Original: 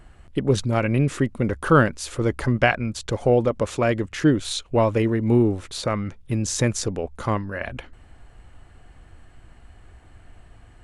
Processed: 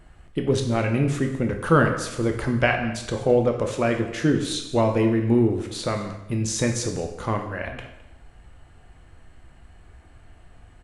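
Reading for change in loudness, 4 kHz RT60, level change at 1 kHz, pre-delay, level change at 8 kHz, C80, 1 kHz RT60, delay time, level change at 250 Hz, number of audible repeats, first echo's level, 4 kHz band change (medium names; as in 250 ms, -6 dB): -1.0 dB, 0.80 s, -1.5 dB, 5 ms, -0.5 dB, 9.5 dB, 0.85 s, 213 ms, -0.5 dB, 1, -19.0 dB, -1.0 dB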